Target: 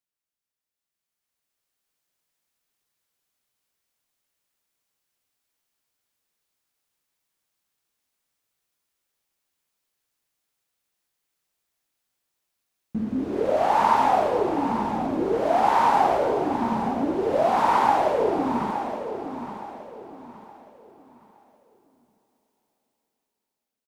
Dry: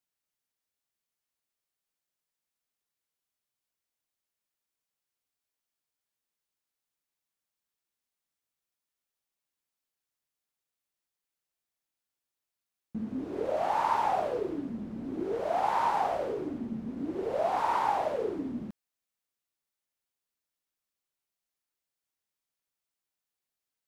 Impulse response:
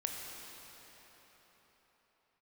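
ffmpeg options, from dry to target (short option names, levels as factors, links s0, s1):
-filter_complex "[0:a]dynaudnorm=f=370:g=7:m=3.98,aecho=1:1:868|1736|2604|3472:0.316|0.104|0.0344|0.0114,asplit=2[s0][s1];[1:a]atrim=start_sample=2205[s2];[s1][s2]afir=irnorm=-1:irlink=0,volume=0.631[s3];[s0][s3]amix=inputs=2:normalize=0,volume=0.422"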